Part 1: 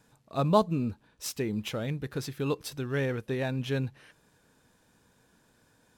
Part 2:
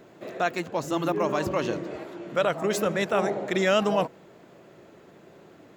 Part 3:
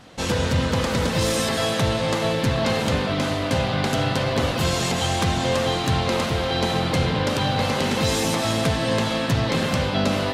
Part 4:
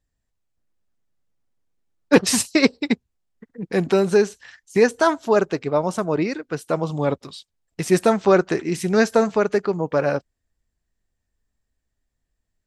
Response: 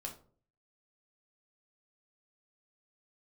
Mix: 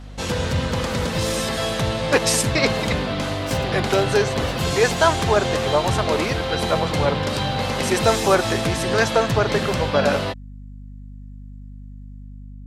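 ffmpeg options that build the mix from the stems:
-filter_complex "[0:a]acompressor=threshold=-35dB:ratio=6,adelay=2250,volume=2.5dB[link_01];[1:a]volume=-19dB[link_02];[2:a]equalizer=frequency=270:width_type=o:width=0.36:gain=-3,volume=-1dB[link_03];[3:a]dynaudnorm=framelen=220:gausssize=5:maxgain=4.5dB,highpass=540,volume=0dB[link_04];[link_01][link_02][link_03][link_04]amix=inputs=4:normalize=0,aeval=exprs='val(0)+0.0158*(sin(2*PI*50*n/s)+sin(2*PI*2*50*n/s)/2+sin(2*PI*3*50*n/s)/3+sin(2*PI*4*50*n/s)/4+sin(2*PI*5*50*n/s)/5)':channel_layout=same"

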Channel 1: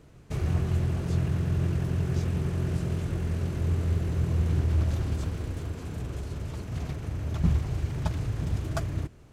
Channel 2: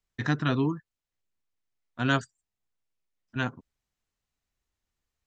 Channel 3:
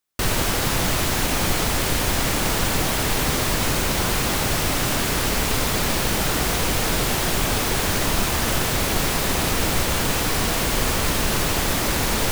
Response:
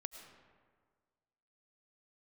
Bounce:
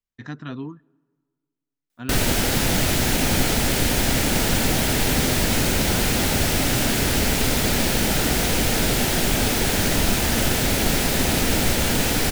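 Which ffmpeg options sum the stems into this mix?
-filter_complex "[0:a]adelay=2450,volume=-8dB[link_01];[1:a]volume=-9dB,asplit=2[link_02][link_03];[link_03]volume=-19dB[link_04];[2:a]equalizer=frequency=1100:width_type=o:width=0.36:gain=-9.5,adelay=1900,volume=1dB[link_05];[3:a]atrim=start_sample=2205[link_06];[link_04][link_06]afir=irnorm=-1:irlink=0[link_07];[link_01][link_02][link_05][link_07]amix=inputs=4:normalize=0,equalizer=frequency=240:width=3.2:gain=5"

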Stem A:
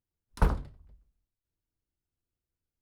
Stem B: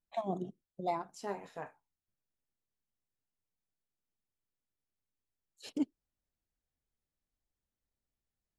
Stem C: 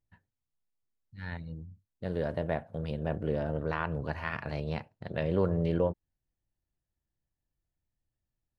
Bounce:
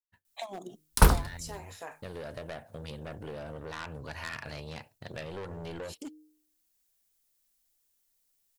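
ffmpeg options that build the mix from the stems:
ffmpeg -i stem1.wav -i stem2.wav -i stem3.wav -filter_complex "[0:a]agate=range=-13dB:threshold=-57dB:ratio=16:detection=peak,adelay=600,volume=2.5dB[link_01];[1:a]equalizer=frequency=66:width_type=o:width=1.8:gain=-10.5,bandreject=frequency=153.5:width_type=h:width=4,bandreject=frequency=307:width_type=h:width=4,bandreject=frequency=460.5:width_type=h:width=4,asoftclip=type=hard:threshold=-28dB,adelay=250,volume=0dB[link_02];[2:a]agate=range=-33dB:threshold=-53dB:ratio=3:detection=peak,asoftclip=type=tanh:threshold=-28dB,volume=-4.5dB,asplit=2[link_03][link_04];[link_04]apad=whole_len=389764[link_05];[link_02][link_05]sidechaincompress=threshold=-45dB:ratio=4:attack=8.8:release=1060[link_06];[link_06][link_03]amix=inputs=2:normalize=0,equalizer=frequency=180:width_type=o:width=0.39:gain=-6,acompressor=threshold=-42dB:ratio=6,volume=0dB[link_07];[link_01][link_07]amix=inputs=2:normalize=0,dynaudnorm=framelen=130:gausssize=3:maxgain=3.5dB,crystalizer=i=5.5:c=0" out.wav

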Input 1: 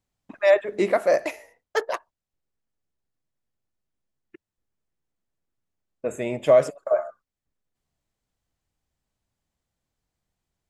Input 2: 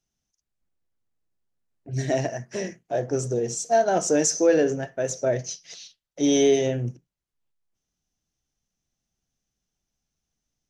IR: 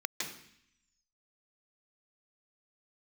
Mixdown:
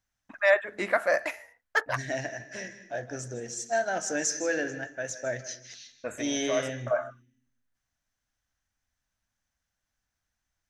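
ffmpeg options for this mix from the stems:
-filter_complex "[0:a]volume=-3.5dB[link_01];[1:a]equalizer=frequency=1100:width_type=o:width=0.77:gain=-5.5,volume=-7dB,asplit=3[link_02][link_03][link_04];[link_03]volume=-13dB[link_05];[link_04]apad=whole_len=471577[link_06];[link_01][link_06]sidechaincompress=threshold=-31dB:ratio=8:attack=5.3:release=150[link_07];[2:a]atrim=start_sample=2205[link_08];[link_05][link_08]afir=irnorm=-1:irlink=0[link_09];[link_07][link_02][link_09]amix=inputs=3:normalize=0,equalizer=frequency=160:width_type=o:width=0.67:gain=-8,equalizer=frequency=400:width_type=o:width=0.67:gain=-10,equalizer=frequency=1600:width_type=o:width=0.67:gain=10"

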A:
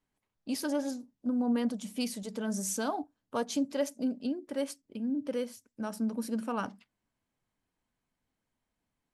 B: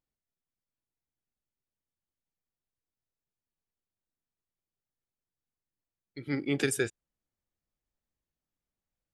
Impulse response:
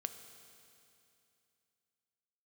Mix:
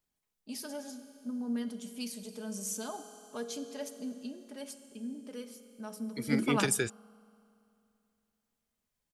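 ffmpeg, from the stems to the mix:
-filter_complex "[0:a]aecho=1:1:4.8:0.5,volume=-3.5dB,asplit=2[link_01][link_02];[link_02]volume=-5dB[link_03];[1:a]acrossover=split=240[link_04][link_05];[link_05]acompressor=threshold=-29dB:ratio=6[link_06];[link_04][link_06]amix=inputs=2:normalize=0,volume=0dB,asplit=2[link_07][link_08];[link_08]apad=whole_len=402971[link_09];[link_01][link_09]sidechaingate=range=-33dB:threshold=-37dB:ratio=16:detection=peak[link_10];[2:a]atrim=start_sample=2205[link_11];[link_03][link_11]afir=irnorm=-1:irlink=0[link_12];[link_10][link_07][link_12]amix=inputs=3:normalize=0,highshelf=frequency=3100:gain=7.5"

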